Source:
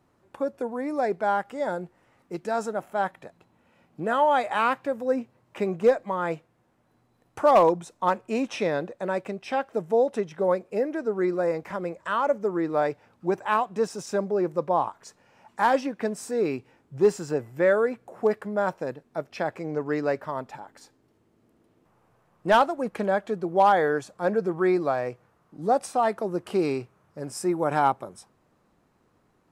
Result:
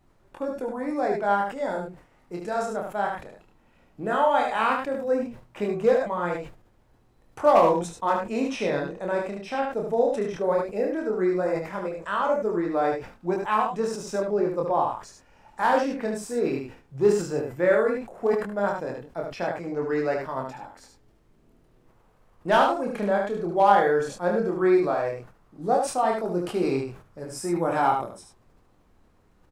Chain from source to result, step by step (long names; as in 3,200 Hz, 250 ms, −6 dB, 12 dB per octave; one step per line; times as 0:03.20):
chorus effect 0.15 Hz, depth 7.1 ms
background noise brown −64 dBFS
single-tap delay 74 ms −5 dB
level that may fall only so fast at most 120 dB per second
level +2 dB